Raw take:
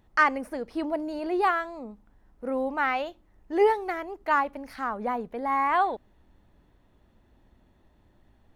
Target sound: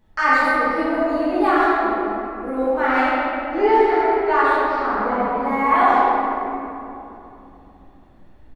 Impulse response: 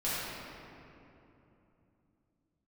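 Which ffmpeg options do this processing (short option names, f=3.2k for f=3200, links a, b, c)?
-filter_complex "[0:a]asettb=1/sr,asplit=3[a][b][c];[a]atrim=end=3.054[d];[b]atrim=start=3.05:end=5.41,asetpts=PTS-STARTPTS,afade=t=in:d=0.004:c=qsin,afade=t=out:st=2.356:d=0.004:c=qsin,lowpass=f=5.7k:w=0.5412,lowpass=f=5.7k:w=1.3066[e];[c]atrim=start=5.406[f];[d][e]acrossfade=d=0.004:c1=hsin:c2=qsin[g];[g][f]acrossfade=d=0.004:c1=qsin:c2=hsin,asplit=2[h][i];[i]adelay=140,highpass=300,lowpass=3.4k,asoftclip=type=hard:threshold=-17.5dB,volume=-6dB[j];[h][j]amix=inputs=2:normalize=0[k];[1:a]atrim=start_sample=2205[l];[k][l]afir=irnorm=-1:irlink=0"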